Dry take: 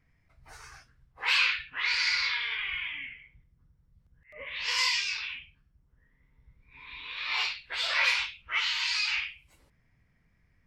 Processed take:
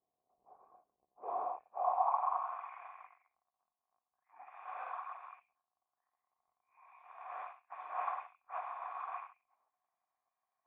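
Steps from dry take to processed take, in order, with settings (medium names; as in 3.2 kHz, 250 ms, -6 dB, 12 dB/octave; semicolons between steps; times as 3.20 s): cycle switcher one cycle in 2, inverted; band-pass sweep 400 Hz -> 1.7 kHz, 1.46–2.67 s; cascade formant filter a; trim +12.5 dB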